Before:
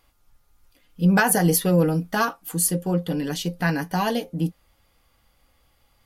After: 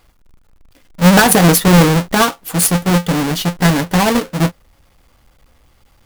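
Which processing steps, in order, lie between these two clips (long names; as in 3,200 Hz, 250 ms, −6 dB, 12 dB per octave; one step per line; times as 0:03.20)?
each half-wave held at its own peak
level +5.5 dB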